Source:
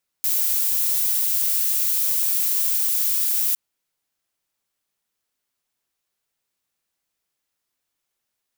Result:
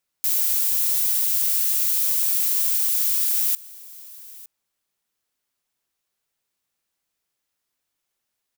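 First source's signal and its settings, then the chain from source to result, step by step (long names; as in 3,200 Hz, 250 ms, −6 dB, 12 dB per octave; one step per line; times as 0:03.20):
noise violet, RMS −21 dBFS 3.31 s
single-tap delay 908 ms −20.5 dB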